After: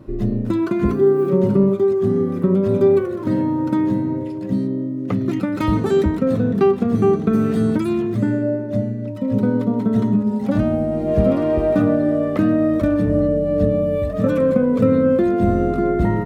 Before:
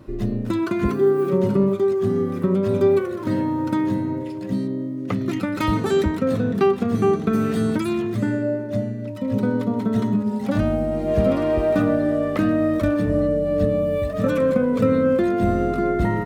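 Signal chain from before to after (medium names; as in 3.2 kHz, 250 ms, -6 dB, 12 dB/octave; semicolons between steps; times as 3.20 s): tilt shelf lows +4 dB, about 940 Hz; hum notches 50/100 Hz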